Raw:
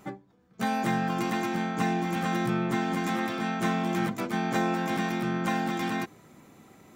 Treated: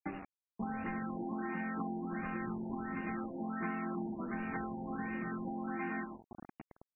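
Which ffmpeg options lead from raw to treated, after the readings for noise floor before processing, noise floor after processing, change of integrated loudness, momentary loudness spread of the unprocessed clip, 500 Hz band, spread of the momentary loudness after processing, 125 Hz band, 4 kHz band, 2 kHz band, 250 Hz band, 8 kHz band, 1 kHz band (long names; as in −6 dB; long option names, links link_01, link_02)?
−58 dBFS, below −85 dBFS, −11.0 dB, 3 LU, −12.0 dB, 10 LU, −13.0 dB, below −30 dB, −10.5 dB, −9.5 dB, below −35 dB, −12.0 dB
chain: -filter_complex "[0:a]equalizer=frequency=125:width_type=o:width=1:gain=-12,equalizer=frequency=250:width_type=o:width=1:gain=4,equalizer=frequency=500:width_type=o:width=1:gain=-7,equalizer=frequency=2000:width_type=o:width=1:gain=5,equalizer=frequency=4000:width_type=o:width=1:gain=-11,equalizer=frequency=8000:width_type=o:width=1:gain=-6,asplit=2[link_01][link_02];[link_02]aecho=0:1:78|156|234|312|390:0.398|0.171|0.0736|0.0317|0.0136[link_03];[link_01][link_03]amix=inputs=2:normalize=0,acompressor=threshold=-41dB:ratio=5,asplit=2[link_04][link_05];[link_05]acrusher=samples=41:mix=1:aa=0.000001:lfo=1:lforange=65.6:lforate=0.47,volume=-9dB[link_06];[link_04][link_06]amix=inputs=2:normalize=0,afftfilt=real='re*gte(hypot(re,im),0.00794)':imag='im*gte(hypot(re,im),0.00794)':win_size=1024:overlap=0.75,acrusher=bits=7:mix=0:aa=0.000001,afftfilt=real='re*lt(b*sr/1024,950*pow(2900/950,0.5+0.5*sin(2*PI*1.4*pts/sr)))':imag='im*lt(b*sr/1024,950*pow(2900/950,0.5+0.5*sin(2*PI*1.4*pts/sr)))':win_size=1024:overlap=0.75,volume=2.5dB"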